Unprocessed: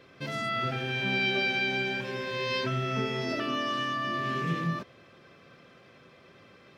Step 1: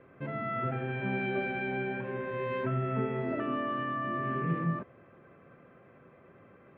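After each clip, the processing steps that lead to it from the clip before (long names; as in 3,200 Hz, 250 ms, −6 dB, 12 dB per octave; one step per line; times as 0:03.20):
Bessel low-pass filter 1,400 Hz, order 6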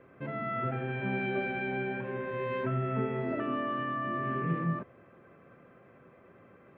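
mains-hum notches 50/100/150 Hz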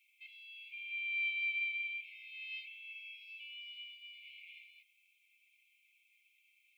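linear-phase brick-wall high-pass 2,100 Hz
high-shelf EQ 3,100 Hz +11.5 dB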